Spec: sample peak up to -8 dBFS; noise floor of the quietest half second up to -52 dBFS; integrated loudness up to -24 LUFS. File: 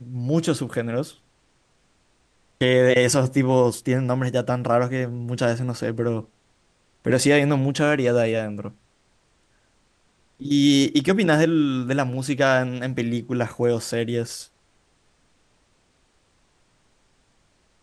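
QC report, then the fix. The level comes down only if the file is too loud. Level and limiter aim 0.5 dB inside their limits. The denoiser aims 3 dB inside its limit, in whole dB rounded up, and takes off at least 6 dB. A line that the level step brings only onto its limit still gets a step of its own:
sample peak -5.5 dBFS: fail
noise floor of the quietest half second -64 dBFS: pass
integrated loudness -21.5 LUFS: fail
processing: trim -3 dB

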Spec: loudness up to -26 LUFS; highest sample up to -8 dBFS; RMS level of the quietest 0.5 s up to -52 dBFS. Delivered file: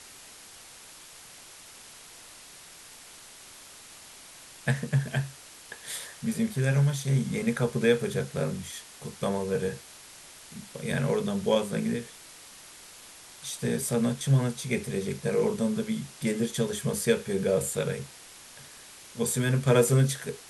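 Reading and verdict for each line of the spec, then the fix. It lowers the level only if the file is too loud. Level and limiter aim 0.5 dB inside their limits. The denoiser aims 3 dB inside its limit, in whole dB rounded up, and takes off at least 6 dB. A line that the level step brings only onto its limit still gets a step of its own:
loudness -28.0 LUFS: pass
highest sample -10.0 dBFS: pass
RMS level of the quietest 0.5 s -49 dBFS: fail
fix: noise reduction 6 dB, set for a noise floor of -49 dBFS

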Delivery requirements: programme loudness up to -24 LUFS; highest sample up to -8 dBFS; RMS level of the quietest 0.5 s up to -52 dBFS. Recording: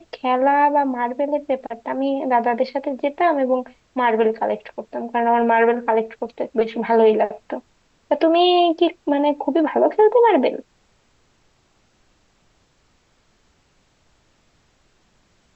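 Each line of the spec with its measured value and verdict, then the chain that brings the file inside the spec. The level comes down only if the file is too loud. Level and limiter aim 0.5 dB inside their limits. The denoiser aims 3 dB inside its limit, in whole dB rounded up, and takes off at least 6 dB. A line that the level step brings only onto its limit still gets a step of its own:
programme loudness -19.0 LUFS: fail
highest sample -6.0 dBFS: fail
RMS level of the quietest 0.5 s -61 dBFS: pass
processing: trim -5.5 dB

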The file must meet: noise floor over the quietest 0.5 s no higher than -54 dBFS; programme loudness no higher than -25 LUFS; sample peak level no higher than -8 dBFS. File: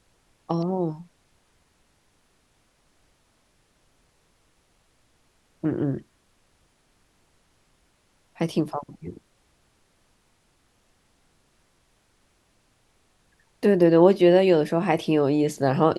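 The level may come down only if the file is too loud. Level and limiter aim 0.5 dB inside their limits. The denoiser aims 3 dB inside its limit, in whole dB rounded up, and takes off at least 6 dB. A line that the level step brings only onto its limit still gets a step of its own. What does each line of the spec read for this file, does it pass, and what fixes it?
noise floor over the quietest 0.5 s -65 dBFS: pass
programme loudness -22.0 LUFS: fail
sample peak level -5.0 dBFS: fail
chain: trim -3.5 dB

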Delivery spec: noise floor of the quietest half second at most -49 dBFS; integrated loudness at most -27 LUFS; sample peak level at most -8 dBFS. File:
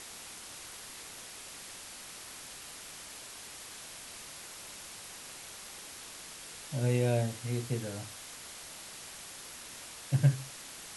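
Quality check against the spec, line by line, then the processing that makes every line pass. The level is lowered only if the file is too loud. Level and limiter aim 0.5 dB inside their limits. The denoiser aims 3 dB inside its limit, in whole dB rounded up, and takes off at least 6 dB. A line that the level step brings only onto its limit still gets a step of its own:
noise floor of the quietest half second -47 dBFS: fail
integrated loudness -38.0 LUFS: pass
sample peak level -13.5 dBFS: pass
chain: noise reduction 6 dB, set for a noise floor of -47 dBFS

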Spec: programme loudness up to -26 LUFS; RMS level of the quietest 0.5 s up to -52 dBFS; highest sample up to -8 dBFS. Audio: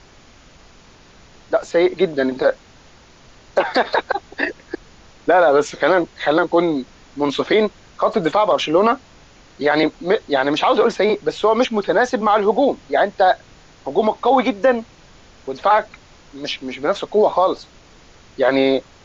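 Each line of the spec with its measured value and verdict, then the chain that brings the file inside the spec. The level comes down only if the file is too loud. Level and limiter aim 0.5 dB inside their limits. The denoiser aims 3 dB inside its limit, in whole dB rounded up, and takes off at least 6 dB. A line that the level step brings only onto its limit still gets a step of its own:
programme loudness -18.0 LUFS: fail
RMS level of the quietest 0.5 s -47 dBFS: fail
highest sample -5.5 dBFS: fail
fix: trim -8.5 dB

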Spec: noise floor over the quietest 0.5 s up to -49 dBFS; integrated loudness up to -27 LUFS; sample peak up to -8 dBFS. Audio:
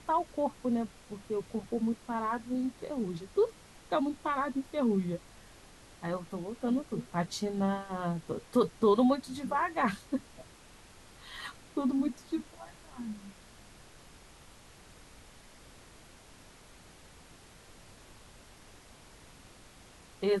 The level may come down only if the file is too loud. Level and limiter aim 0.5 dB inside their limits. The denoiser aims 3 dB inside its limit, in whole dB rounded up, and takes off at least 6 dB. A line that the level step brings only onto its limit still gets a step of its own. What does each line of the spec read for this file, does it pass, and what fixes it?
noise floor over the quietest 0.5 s -55 dBFS: pass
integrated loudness -33.0 LUFS: pass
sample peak -15.0 dBFS: pass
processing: none needed

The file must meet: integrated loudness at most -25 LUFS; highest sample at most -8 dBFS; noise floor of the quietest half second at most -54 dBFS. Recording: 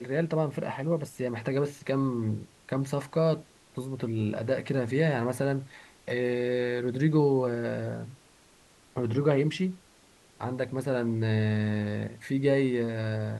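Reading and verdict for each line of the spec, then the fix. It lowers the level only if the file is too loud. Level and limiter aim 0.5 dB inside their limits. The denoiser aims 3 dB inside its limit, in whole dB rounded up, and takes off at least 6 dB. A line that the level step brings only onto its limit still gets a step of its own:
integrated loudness -29.0 LUFS: pass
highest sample -11.5 dBFS: pass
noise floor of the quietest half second -59 dBFS: pass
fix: none needed

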